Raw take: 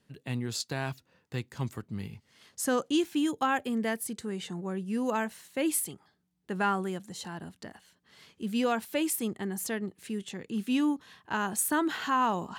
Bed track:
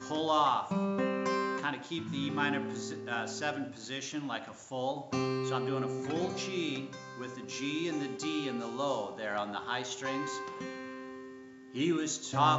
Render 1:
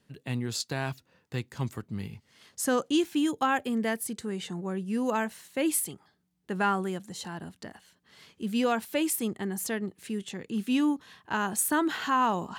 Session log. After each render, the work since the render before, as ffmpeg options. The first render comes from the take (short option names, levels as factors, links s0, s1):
-af "volume=1.19"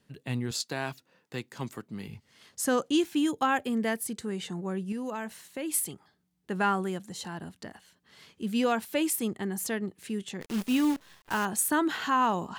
-filter_complex "[0:a]asettb=1/sr,asplit=3[s0][s1][s2];[s0]atrim=end=0.514[s3];[s1]atrim=start=0.51:end=2.08,asetpts=PTS-STARTPTS,afade=t=in:d=0.004:c=qsin,afade=t=out:st=1.566:d=0.004:c=qsin,highpass=190[s4];[s2]atrim=start=2.076[s5];[s3][s4]acrossfade=d=0.004:c1=hsin:c2=qsin[s6];[s6][s5]acrossfade=d=0.004:c1=qsin:c2=hsin,asettb=1/sr,asplit=3[s7][s8][s9];[s7]atrim=end=4.924[s10];[s8]atrim=start=4.92:end=5.74,asetpts=PTS-STARTPTS,afade=t=in:d=0.004:c=qsin,afade=t=out:st=0.816:d=0.004:c=qsin,acompressor=threshold=0.02:ratio=2.5:attack=3.2:release=140:knee=1:detection=peak[s11];[s9]atrim=start=5.736[s12];[s10][s11]acrossfade=d=0.004:c1=hsin:c2=qsin[s13];[s13][s12]acrossfade=d=0.004:c1=qsin:c2=hsin,asplit=3[s14][s15][s16];[s14]afade=t=out:st=10.4:d=0.02[s17];[s15]acrusher=bits=7:dc=4:mix=0:aa=0.000001,afade=t=in:st=10.4:d=0.02,afade=t=out:st=11.44:d=0.02[s18];[s16]afade=t=in:st=11.44:d=0.02[s19];[s17][s18][s19]amix=inputs=3:normalize=0"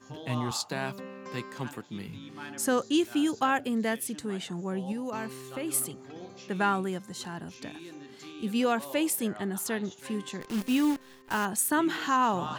-filter_complex "[1:a]volume=0.282[s0];[0:a][s0]amix=inputs=2:normalize=0"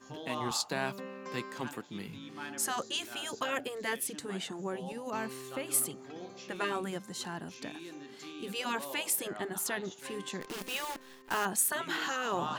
-af "afftfilt=real='re*lt(hypot(re,im),0.224)':imag='im*lt(hypot(re,im),0.224)':win_size=1024:overlap=0.75,equalizer=f=75:t=o:w=2:g=-8.5"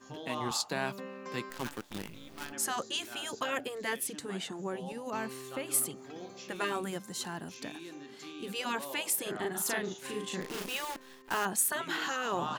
-filter_complex "[0:a]asplit=3[s0][s1][s2];[s0]afade=t=out:st=1.49:d=0.02[s3];[s1]acrusher=bits=7:dc=4:mix=0:aa=0.000001,afade=t=in:st=1.49:d=0.02,afade=t=out:st=2.51:d=0.02[s4];[s2]afade=t=in:st=2.51:d=0.02[s5];[s3][s4][s5]amix=inputs=3:normalize=0,asettb=1/sr,asplit=3[s6][s7][s8];[s6]atrim=end=5.964[s9];[s7]atrim=start=5.96:end=7.78,asetpts=PTS-STARTPTS,afade=t=in:d=0.004:c=qsin,afade=t=out:st=1.816:d=0.004:c=qsin,highshelf=f=8600:g=7.5[s10];[s8]atrim=start=7.776[s11];[s9][s10]acrossfade=d=0.004:c1=hsin:c2=qsin[s12];[s12][s11]acrossfade=d=0.004:c1=qsin:c2=hsin,asplit=3[s13][s14][s15];[s13]afade=t=out:st=9.25:d=0.02[s16];[s14]asplit=2[s17][s18];[s18]adelay=38,volume=0.794[s19];[s17][s19]amix=inputs=2:normalize=0,afade=t=in:st=9.25:d=0.02,afade=t=out:st=10.68:d=0.02[s20];[s15]afade=t=in:st=10.68:d=0.02[s21];[s16][s20][s21]amix=inputs=3:normalize=0"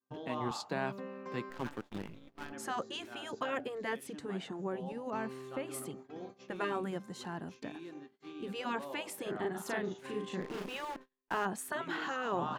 -af "agate=range=0.0158:threshold=0.00501:ratio=16:detection=peak,lowpass=f=1400:p=1"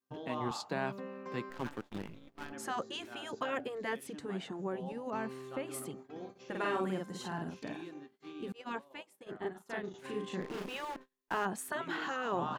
-filter_complex "[0:a]asplit=3[s0][s1][s2];[s0]afade=t=out:st=6.35:d=0.02[s3];[s1]asplit=2[s4][s5];[s5]adelay=48,volume=0.794[s6];[s4][s6]amix=inputs=2:normalize=0,afade=t=in:st=6.35:d=0.02,afade=t=out:st=7.87:d=0.02[s7];[s2]afade=t=in:st=7.87:d=0.02[s8];[s3][s7][s8]amix=inputs=3:normalize=0,asettb=1/sr,asplit=3[s9][s10][s11];[s9]atrim=end=8.524[s12];[s10]atrim=start=8.52:end=9.94,asetpts=PTS-STARTPTS,afade=t=in:d=0.004:c=qsin,afade=t=out:st=1.416:d=0.004:c=qsin,agate=range=0.0224:threshold=0.0251:ratio=3:release=100:detection=peak[s13];[s11]atrim=start=9.936[s14];[s12][s13]acrossfade=d=0.004:c1=hsin:c2=qsin[s15];[s15][s14]acrossfade=d=0.004:c1=qsin:c2=hsin"